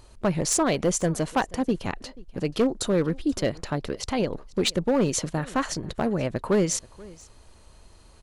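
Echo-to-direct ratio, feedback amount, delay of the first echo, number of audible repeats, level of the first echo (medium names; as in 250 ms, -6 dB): -22.5 dB, no regular repeats, 483 ms, 1, -22.5 dB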